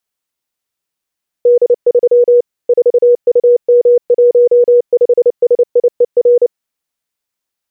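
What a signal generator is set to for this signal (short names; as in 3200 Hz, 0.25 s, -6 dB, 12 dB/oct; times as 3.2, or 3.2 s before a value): Morse "D3 4UM15SIER" 29 wpm 484 Hz -4 dBFS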